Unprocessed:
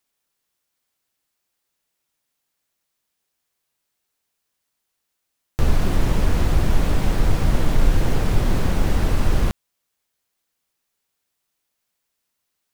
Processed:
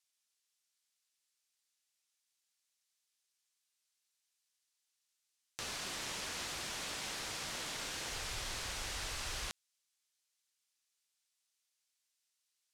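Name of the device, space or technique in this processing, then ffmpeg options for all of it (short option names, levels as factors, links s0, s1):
piezo pickup straight into a mixer: -filter_complex "[0:a]lowpass=6500,aderivative,asplit=3[s0][s1][s2];[s0]afade=t=out:st=8.08:d=0.02[s3];[s1]asubboost=boost=8:cutoff=70,afade=t=in:st=8.08:d=0.02,afade=t=out:st=9.48:d=0.02[s4];[s2]afade=t=in:st=9.48:d=0.02[s5];[s3][s4][s5]amix=inputs=3:normalize=0,volume=1.26"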